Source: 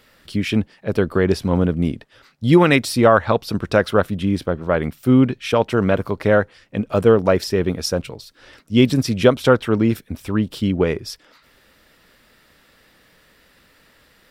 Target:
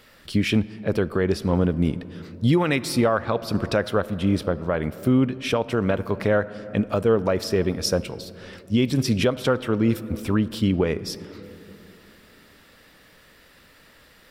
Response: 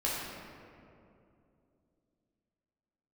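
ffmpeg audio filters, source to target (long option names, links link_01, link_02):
-filter_complex "[0:a]asplit=2[link_01][link_02];[1:a]atrim=start_sample=2205[link_03];[link_02][link_03]afir=irnorm=-1:irlink=0,volume=-23dB[link_04];[link_01][link_04]amix=inputs=2:normalize=0,asettb=1/sr,asplit=3[link_05][link_06][link_07];[link_05]atrim=end=5.254[link_08];[link_06]atrim=start=5.25:end=5.9,asetpts=PTS-STARTPTS,afade=type=in:duration=0.004:curve=qsin,afade=type=out:start_time=0.646:duration=0.004:curve=qsin,acompressor=threshold=-22dB:ratio=2[link_09];[link_07]atrim=start=5.896[link_10];[link_08][link_09]acrossfade=duration=0.004:curve1=hsin:curve2=qsin[link_11];[link_11][link_10]acrossfade=duration=0.004:curve1=qsin:curve2=hsin,alimiter=limit=-11.5dB:level=0:latency=1:release=442,volume=1dB"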